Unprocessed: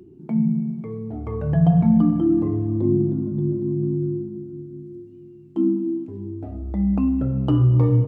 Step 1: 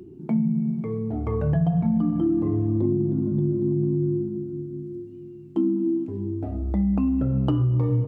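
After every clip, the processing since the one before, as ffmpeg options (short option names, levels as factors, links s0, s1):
-af "acompressor=threshold=0.0794:ratio=6,volume=1.41"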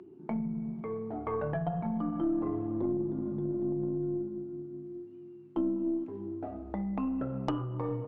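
-af "bandpass=f=1100:t=q:w=0.86:csg=0,aeval=exprs='0.168*(cos(1*acos(clip(val(0)/0.168,-1,1)))-cos(1*PI/2))+0.0237*(cos(4*acos(clip(val(0)/0.168,-1,1)))-cos(4*PI/2))+0.0188*(cos(5*acos(clip(val(0)/0.168,-1,1)))-cos(5*PI/2))+0.00473*(cos(6*acos(clip(val(0)/0.168,-1,1)))-cos(6*PI/2))+0.00944*(cos(7*acos(clip(val(0)/0.168,-1,1)))-cos(7*PI/2))':c=same"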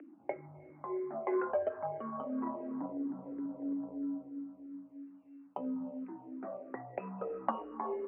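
-filter_complex "[0:a]highpass=f=430:t=q:w=0.5412,highpass=f=430:t=q:w=1.307,lowpass=f=2500:t=q:w=0.5176,lowpass=f=2500:t=q:w=0.7071,lowpass=f=2500:t=q:w=1.932,afreqshift=-71,asplit=2[s0][s1];[s1]afreqshift=-3[s2];[s0][s2]amix=inputs=2:normalize=1,volume=1.88"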